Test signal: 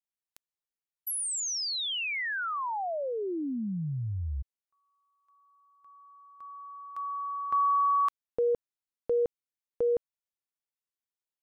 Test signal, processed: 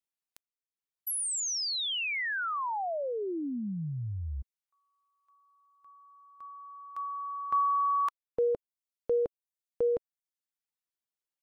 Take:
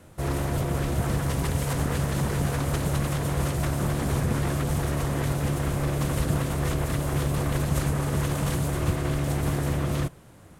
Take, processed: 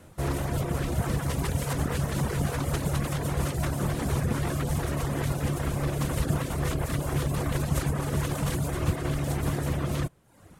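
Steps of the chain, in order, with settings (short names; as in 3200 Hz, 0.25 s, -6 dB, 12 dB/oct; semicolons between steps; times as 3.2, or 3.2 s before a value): reverb removal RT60 0.69 s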